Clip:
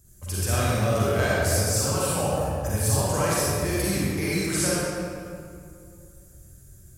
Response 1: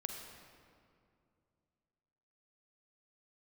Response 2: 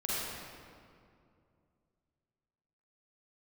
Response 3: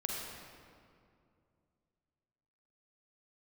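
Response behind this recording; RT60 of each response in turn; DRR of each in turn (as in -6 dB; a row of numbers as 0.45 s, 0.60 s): 2; 2.4 s, 2.4 s, 2.4 s; 3.0 dB, -8.5 dB, -2.0 dB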